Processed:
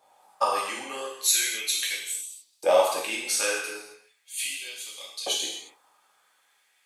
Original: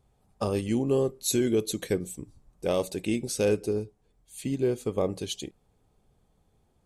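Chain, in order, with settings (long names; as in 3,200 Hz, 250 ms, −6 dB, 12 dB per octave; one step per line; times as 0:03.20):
in parallel at +2 dB: downward compressor, threshold −37 dBFS, peak gain reduction 15.5 dB
on the sum: reverb whose tail is shaped and stops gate 300 ms falling, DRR −4 dB
auto-filter high-pass saw up 0.38 Hz 740–4,100 Hz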